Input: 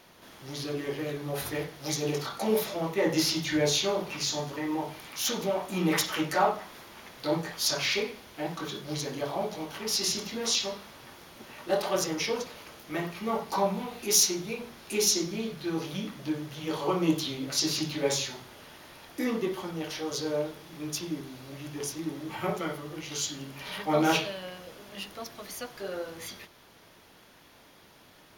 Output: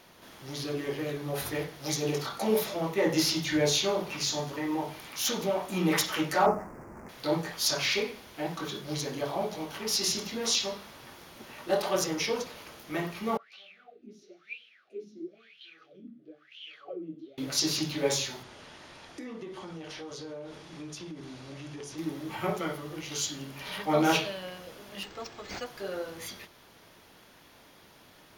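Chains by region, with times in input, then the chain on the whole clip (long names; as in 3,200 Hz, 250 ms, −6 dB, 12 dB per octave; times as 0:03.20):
0:06.46–0:07.09: running median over 15 samples + Butterworth band-reject 3,500 Hz, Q 1 + low-shelf EQ 460 Hz +10 dB
0:13.37–0:17.38: parametric band 3,700 Hz +6.5 dB 1.8 octaves + LFO wah 1 Hz 230–3,100 Hz, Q 11 + Butterworth band-reject 940 Hz, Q 1.8
0:18.43–0:21.98: low-pass filter 8,700 Hz 24 dB per octave + dynamic equaliser 5,900 Hz, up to −4 dB, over −48 dBFS, Q 0.94 + downward compressor, threshold −38 dBFS
0:25.03–0:25.66: high-shelf EQ 8,300 Hz +4 dB + comb filter 2.4 ms, depth 34% + linearly interpolated sample-rate reduction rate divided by 4×
whole clip: no processing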